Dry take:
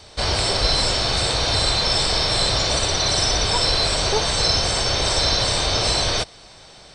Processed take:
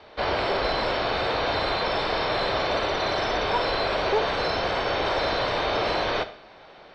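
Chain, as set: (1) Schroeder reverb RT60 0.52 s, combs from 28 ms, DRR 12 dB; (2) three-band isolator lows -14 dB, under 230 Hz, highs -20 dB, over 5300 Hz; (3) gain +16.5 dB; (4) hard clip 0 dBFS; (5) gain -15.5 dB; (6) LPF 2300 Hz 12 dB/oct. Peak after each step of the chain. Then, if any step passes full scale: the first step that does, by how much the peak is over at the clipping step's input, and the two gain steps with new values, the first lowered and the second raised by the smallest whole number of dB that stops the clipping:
-5.5, -9.0, +7.5, 0.0, -15.5, -15.0 dBFS; step 3, 7.5 dB; step 3 +8.5 dB, step 5 -7.5 dB

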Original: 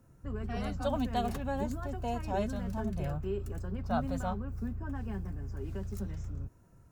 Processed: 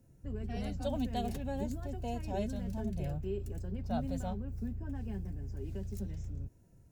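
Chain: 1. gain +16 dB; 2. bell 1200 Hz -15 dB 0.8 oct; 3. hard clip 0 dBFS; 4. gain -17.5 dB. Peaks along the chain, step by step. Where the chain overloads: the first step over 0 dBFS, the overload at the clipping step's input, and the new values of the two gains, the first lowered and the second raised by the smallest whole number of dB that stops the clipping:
-3.0, -5.0, -5.0, -22.5 dBFS; no overload

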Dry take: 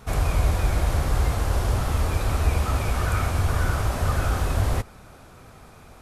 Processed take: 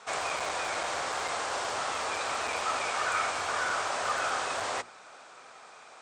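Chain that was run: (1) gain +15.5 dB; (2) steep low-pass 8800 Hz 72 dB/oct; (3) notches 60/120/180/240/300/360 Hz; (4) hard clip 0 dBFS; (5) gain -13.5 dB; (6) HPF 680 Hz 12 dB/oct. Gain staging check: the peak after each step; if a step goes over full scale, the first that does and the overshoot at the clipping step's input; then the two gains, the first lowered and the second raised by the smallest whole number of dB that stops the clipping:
+6.0, +6.0, +5.5, 0.0, -13.5, -17.5 dBFS; step 1, 5.5 dB; step 1 +9.5 dB, step 5 -7.5 dB

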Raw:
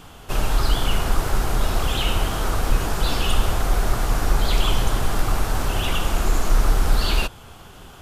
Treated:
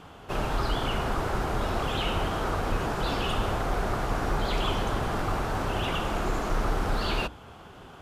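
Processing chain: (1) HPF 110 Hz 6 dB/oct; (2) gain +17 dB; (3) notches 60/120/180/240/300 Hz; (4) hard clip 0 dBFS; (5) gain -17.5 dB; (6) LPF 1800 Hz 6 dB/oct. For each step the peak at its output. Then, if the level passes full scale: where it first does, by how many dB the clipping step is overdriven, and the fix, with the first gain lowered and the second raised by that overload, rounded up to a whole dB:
-11.0, +6.0, +5.5, 0.0, -17.5, -17.5 dBFS; step 2, 5.5 dB; step 2 +11 dB, step 5 -11.5 dB

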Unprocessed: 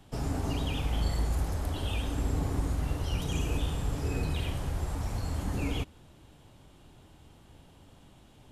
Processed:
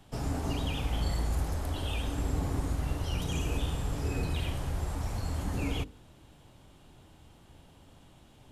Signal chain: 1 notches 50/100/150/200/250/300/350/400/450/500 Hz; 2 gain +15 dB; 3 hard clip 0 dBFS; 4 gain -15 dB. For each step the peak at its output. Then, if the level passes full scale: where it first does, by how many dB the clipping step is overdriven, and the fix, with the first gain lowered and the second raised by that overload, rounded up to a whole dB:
-18.5, -3.5, -3.5, -18.5 dBFS; no overload

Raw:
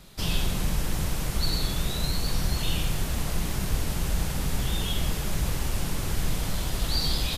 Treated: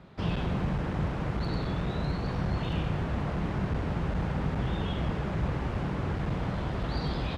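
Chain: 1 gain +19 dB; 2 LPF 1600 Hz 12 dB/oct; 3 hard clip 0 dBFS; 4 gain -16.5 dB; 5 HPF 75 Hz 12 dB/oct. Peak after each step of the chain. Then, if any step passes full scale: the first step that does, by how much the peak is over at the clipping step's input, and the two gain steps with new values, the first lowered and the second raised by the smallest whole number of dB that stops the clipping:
+7.0, +6.0, 0.0, -16.5, -17.5 dBFS; step 1, 6.0 dB; step 1 +13 dB, step 4 -10.5 dB

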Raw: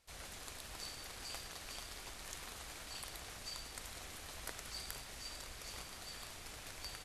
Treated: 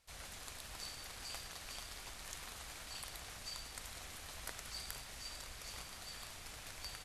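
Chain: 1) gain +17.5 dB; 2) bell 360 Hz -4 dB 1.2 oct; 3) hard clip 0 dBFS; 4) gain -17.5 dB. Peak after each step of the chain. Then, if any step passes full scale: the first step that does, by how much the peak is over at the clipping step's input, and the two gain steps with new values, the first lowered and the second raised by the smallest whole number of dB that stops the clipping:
-4.5, -4.5, -4.5, -22.0 dBFS; no overload

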